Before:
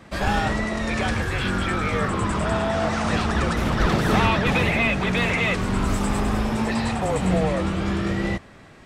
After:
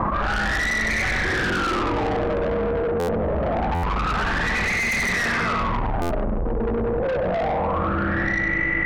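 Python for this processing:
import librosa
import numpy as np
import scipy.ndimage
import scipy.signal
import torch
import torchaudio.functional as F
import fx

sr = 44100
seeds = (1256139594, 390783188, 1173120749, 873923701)

y = fx.fade_out_tail(x, sr, length_s=2.08)
y = fx.peak_eq(y, sr, hz=360.0, db=13.5, octaves=1.9, at=(1.24, 2.08))
y = fx.echo_feedback(y, sr, ms=96, feedback_pct=57, wet_db=-4.0)
y = fx.rev_spring(y, sr, rt60_s=2.5, pass_ms=(34, 39), chirp_ms=40, drr_db=4.0)
y = fx.filter_lfo_lowpass(y, sr, shape='sine', hz=0.26, low_hz=460.0, high_hz=2100.0, q=7.5)
y = fx.low_shelf(y, sr, hz=63.0, db=10.0)
y = 10.0 ** (-16.0 / 20.0) * np.tanh(y / 10.0 ** (-16.0 / 20.0))
y = fx.lowpass(y, sr, hz=3800.0, slope=6, at=(3.82, 4.92))
y = fx.buffer_glitch(y, sr, at_s=(2.99, 3.74, 6.01), block=512, repeats=7)
y = fx.env_flatten(y, sr, amount_pct=100)
y = y * 10.0 ** (-5.5 / 20.0)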